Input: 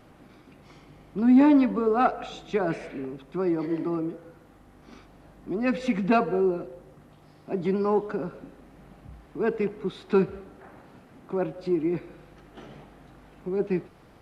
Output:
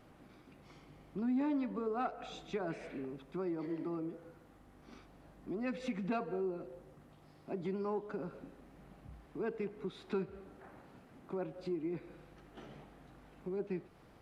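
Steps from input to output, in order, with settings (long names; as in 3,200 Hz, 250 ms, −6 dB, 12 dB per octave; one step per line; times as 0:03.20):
downward compressor 2 to 1, threshold −32 dBFS, peak gain reduction 10.5 dB
level −7 dB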